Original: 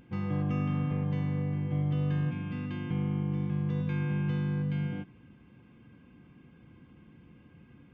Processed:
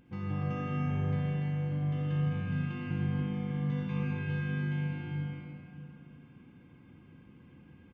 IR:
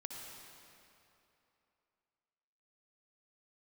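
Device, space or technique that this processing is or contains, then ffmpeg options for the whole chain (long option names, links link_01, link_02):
cave: -filter_complex "[0:a]asettb=1/sr,asplit=3[link_01][link_02][link_03];[link_01]atrim=end=3.204[link_04];[link_02]atrim=start=3.2:end=4.03,asetpts=PTS-STARTPTS,afade=type=in:duration=0.004:curve=qsin,afade=type=out:start_time=0.826:duration=0.004:curve=qsin,asplit=2[link_05][link_06];[link_06]adelay=16,volume=-4dB[link_07];[link_05][link_07]amix=inputs=2:normalize=0,atrim=end_sample=36603[link_08];[link_03]atrim=start=4.026[link_09];[link_04][link_08]acrossfade=duration=0.004:curve1=hsin:curve2=qsin[link_10];[link_10][link_09]acrossfade=duration=0.004:curve1=qsin:curve2=hsin,aecho=1:1:164:0.376[link_11];[1:a]atrim=start_sample=2205[link_12];[link_11][link_12]afir=irnorm=-1:irlink=0,aecho=1:1:207|291.5:0.355|0.398"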